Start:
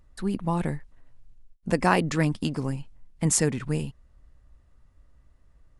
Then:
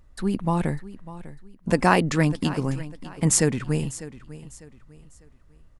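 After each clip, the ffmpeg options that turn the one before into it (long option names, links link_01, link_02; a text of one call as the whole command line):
ffmpeg -i in.wav -af "aecho=1:1:599|1198|1797:0.15|0.0494|0.0163,volume=3dB" out.wav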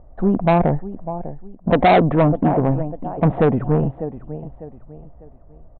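ffmpeg -i in.wav -af "lowpass=frequency=700:width_type=q:width=4.9,aresample=8000,asoftclip=type=tanh:threshold=-17.5dB,aresample=44100,volume=8.5dB" out.wav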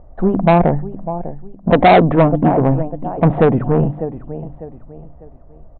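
ffmpeg -i in.wav -af "bandreject=frequency=49.87:width_type=h:width=4,bandreject=frequency=99.74:width_type=h:width=4,bandreject=frequency=149.61:width_type=h:width=4,bandreject=frequency=199.48:width_type=h:width=4,bandreject=frequency=249.35:width_type=h:width=4,bandreject=frequency=299.22:width_type=h:width=4,volume=4.5dB" -ar 16000 -c:a libmp3lame -b:a 80k out.mp3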